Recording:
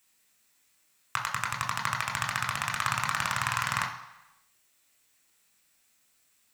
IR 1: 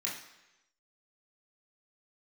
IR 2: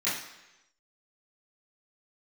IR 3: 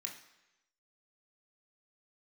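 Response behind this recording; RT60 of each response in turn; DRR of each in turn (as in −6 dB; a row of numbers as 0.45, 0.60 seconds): 3; 1.0, 1.0, 1.0 seconds; −6.0, −13.5, 0.0 decibels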